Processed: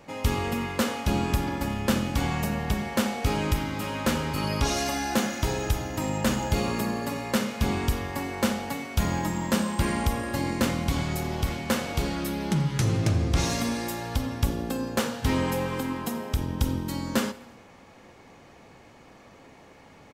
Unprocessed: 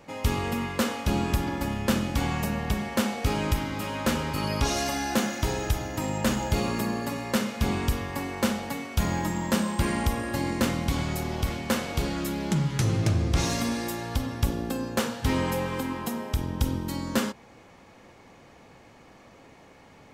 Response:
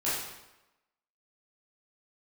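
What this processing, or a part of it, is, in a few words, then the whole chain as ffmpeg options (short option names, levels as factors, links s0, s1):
compressed reverb return: -filter_complex "[0:a]asplit=2[s0][s1];[1:a]atrim=start_sample=2205[s2];[s1][s2]afir=irnorm=-1:irlink=0,acompressor=threshold=0.0631:ratio=6,volume=0.0944[s3];[s0][s3]amix=inputs=2:normalize=0,asettb=1/sr,asplit=3[s4][s5][s6];[s4]atrim=end=12.154[s7];[s5]atrim=start=12.15:end=12.76,asetpts=PTS-STARTPTS,afade=t=in:d=0.004:c=qsin,afade=t=out:st=0.606:d=0.004:c=qsin,bandreject=f=7100:w=7.5[s8];[s6]atrim=start=12.756[s9];[s7][s8]acrossfade=d=0.004:c1=hsin:c2=qsin[s10];[s10][s9]acrossfade=d=0.004:c1=qsin:c2=hsin,aecho=1:1:84|168|252|336:0.0891|0.0446|0.0223|0.0111"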